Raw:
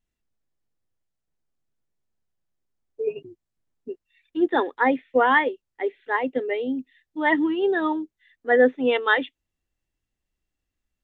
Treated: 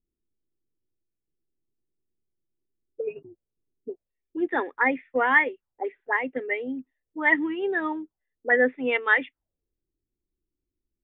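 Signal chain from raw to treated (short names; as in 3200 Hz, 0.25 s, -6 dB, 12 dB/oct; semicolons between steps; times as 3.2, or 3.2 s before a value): low shelf 200 Hz +3.5 dB; envelope low-pass 360–2200 Hz up, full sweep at -21.5 dBFS; gain -6.5 dB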